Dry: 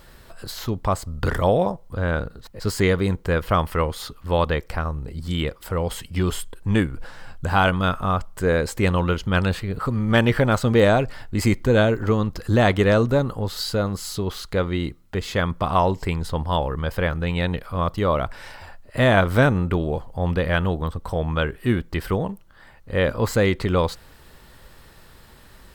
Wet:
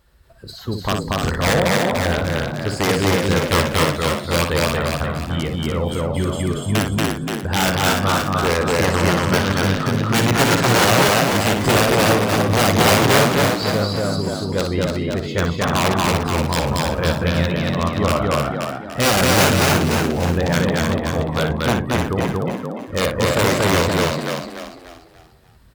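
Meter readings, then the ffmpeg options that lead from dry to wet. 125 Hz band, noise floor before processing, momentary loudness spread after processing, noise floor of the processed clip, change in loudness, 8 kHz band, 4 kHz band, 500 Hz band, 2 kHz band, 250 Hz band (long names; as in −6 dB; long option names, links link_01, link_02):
+2.5 dB, −49 dBFS, 9 LU, −40 dBFS, +4.0 dB, +13.5 dB, +10.0 dB, +3.0 dB, +6.0 dB, +4.0 dB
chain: -filter_complex "[0:a]aeval=exprs='(mod(3.55*val(0)+1,2)-1)/3.55':channel_layout=same,asplit=2[link_01][link_02];[link_02]aecho=0:1:58.31|233.2:0.501|0.891[link_03];[link_01][link_03]amix=inputs=2:normalize=0,afftdn=noise_reduction=13:noise_floor=-34,highpass=49,asplit=2[link_04][link_05];[link_05]asplit=5[link_06][link_07][link_08][link_09][link_10];[link_06]adelay=293,afreqshift=58,volume=-4.5dB[link_11];[link_07]adelay=586,afreqshift=116,volume=-12.9dB[link_12];[link_08]adelay=879,afreqshift=174,volume=-21.3dB[link_13];[link_09]adelay=1172,afreqshift=232,volume=-29.7dB[link_14];[link_10]adelay=1465,afreqshift=290,volume=-38.1dB[link_15];[link_11][link_12][link_13][link_14][link_15]amix=inputs=5:normalize=0[link_16];[link_04][link_16]amix=inputs=2:normalize=0"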